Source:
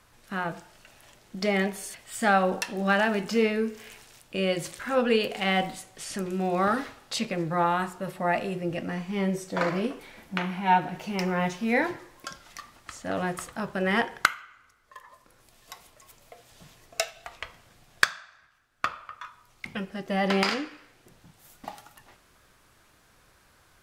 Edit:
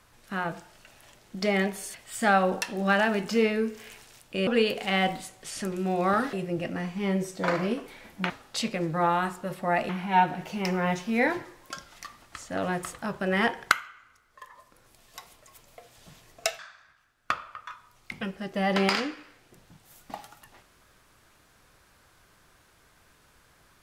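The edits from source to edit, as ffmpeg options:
-filter_complex "[0:a]asplit=6[a][b][c][d][e][f];[a]atrim=end=4.472[g];[b]atrim=start=5.008:end=6.872[h];[c]atrim=start=8.458:end=10.432[i];[d]atrim=start=6.868:end=8.462[j];[e]atrim=start=10.428:end=17.132[k];[f]atrim=start=18.128[l];[g][h]acrossfade=d=0.004:c1=hsin:c2=hsin[m];[m][i]acrossfade=d=0.004:c1=hsin:c2=hsin[n];[n][j]acrossfade=d=0.004:c1=hsin:c2=hsin[o];[o][k]acrossfade=d=0.004:c1=hsin:c2=hsin[p];[p][l]acrossfade=d=0.004:c1=hsin:c2=hsin"

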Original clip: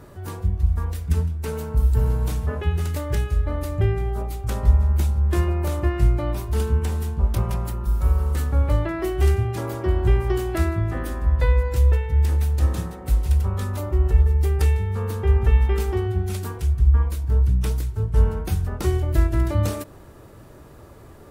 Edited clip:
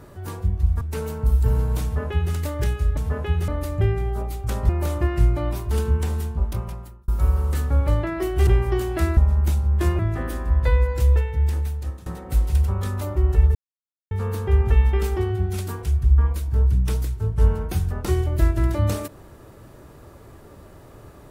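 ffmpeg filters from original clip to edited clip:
-filter_complex "[0:a]asplit=12[a][b][c][d][e][f][g][h][i][j][k][l];[a]atrim=end=0.812[m];[b]atrim=start=1.318:end=3.482[n];[c]atrim=start=2.338:end=2.852[o];[d]atrim=start=3.478:end=4.692[p];[e]atrim=start=5.508:end=7.9,asetpts=PTS-STARTPTS,afade=t=out:st=1.492:d=0.9[q];[f]atrim=start=7.9:end=9.292,asetpts=PTS-STARTPTS,afade=t=in:d=0.004:c=hsin[r];[g]atrim=start=10.048:end=10.752[s];[h]atrim=start=4.688:end=5.512[t];[i]atrim=start=10.748:end=12.82,asetpts=PTS-STARTPTS,afade=t=out:st=0.972:d=1.1:c=qsin:silence=0.0794328[u];[j]atrim=start=12.82:end=14.31,asetpts=PTS-STARTPTS,afade=t=in:d=0.004:c=hsin:silence=0.0794328,afade=t=out:st=1.486:d=0.004:c=hsin[v];[k]atrim=start=14.31:end=14.87,asetpts=PTS-STARTPTS,volume=0[w];[l]atrim=start=14.87,asetpts=PTS-STARTPTS,afade=t=in:d=0.004:c=hsin[x];[m][n]acrossfade=d=0.004:c1=hsin:c2=hsin[y];[y][o]acrossfade=d=0.004:c1=hsin:c2=hsin[z];[z][p]acrossfade=d=0.004:c1=hsin:c2=hsin[aa];[q][r]concat=n=2:v=0:a=1[ab];[aa][ab]acrossfade=d=0.004:c1=hsin:c2=hsin[ac];[ac][s]acrossfade=d=0.004:c1=hsin:c2=hsin[ad];[ad][t]acrossfade=d=0.004:c1=hsin:c2=hsin[ae];[u][v][w][x]concat=n=4:v=0:a=1[af];[ae][af]acrossfade=d=0.004:c1=hsin:c2=hsin"

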